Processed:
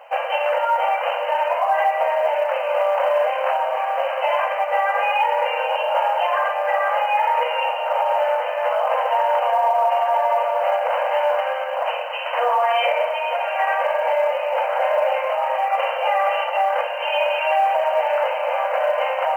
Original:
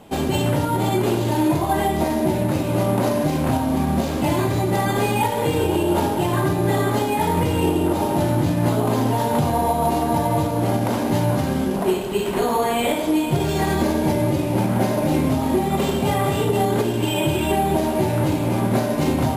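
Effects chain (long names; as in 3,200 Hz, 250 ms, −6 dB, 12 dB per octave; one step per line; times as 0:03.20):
brick-wall band-pass 480–3,100 Hz
brickwall limiter −17 dBFS, peak gain reduction 5.5 dB
log-companded quantiser 8 bits
level +6.5 dB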